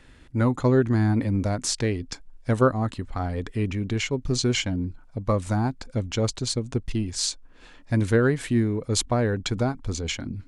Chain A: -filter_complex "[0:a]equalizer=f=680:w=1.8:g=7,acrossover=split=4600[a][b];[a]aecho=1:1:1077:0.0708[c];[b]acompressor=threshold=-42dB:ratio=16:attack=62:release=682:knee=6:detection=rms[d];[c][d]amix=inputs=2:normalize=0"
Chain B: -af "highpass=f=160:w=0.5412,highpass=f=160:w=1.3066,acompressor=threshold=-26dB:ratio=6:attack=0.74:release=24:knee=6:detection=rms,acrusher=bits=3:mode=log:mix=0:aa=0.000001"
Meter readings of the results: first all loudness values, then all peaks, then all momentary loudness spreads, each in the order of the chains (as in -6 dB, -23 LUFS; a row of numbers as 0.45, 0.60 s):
-24.5, -33.0 LUFS; -4.5, -16.5 dBFS; 10, 7 LU